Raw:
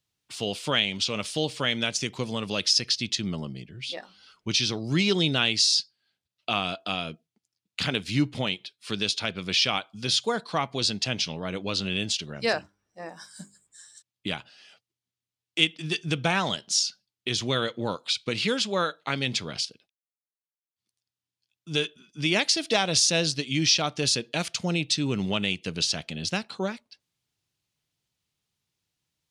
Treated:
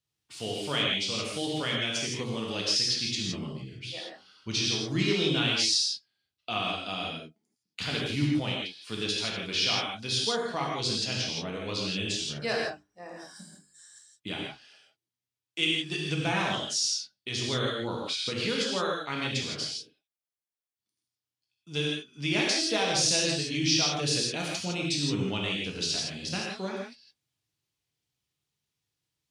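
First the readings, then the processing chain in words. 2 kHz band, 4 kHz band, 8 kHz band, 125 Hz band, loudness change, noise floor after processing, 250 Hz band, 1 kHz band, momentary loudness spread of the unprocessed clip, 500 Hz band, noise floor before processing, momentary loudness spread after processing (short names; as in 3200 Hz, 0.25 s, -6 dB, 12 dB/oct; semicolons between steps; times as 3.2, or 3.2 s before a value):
-2.5 dB, -2.5 dB, -2.0 dB, -2.0 dB, -2.5 dB, under -85 dBFS, -2.0 dB, -3.0 dB, 13 LU, -2.5 dB, under -85 dBFS, 13 LU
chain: non-linear reverb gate 0.19 s flat, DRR -3 dB; gain -7.5 dB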